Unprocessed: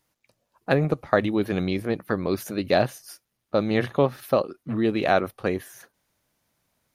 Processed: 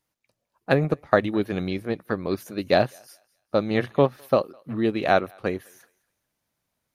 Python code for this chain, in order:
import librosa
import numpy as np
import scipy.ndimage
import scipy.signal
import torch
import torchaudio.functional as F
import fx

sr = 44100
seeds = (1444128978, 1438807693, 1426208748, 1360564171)

y = fx.echo_thinned(x, sr, ms=207, feedback_pct=31, hz=690.0, wet_db=-21)
y = fx.upward_expand(y, sr, threshold_db=-33.0, expansion=1.5)
y = F.gain(torch.from_numpy(y), 2.5).numpy()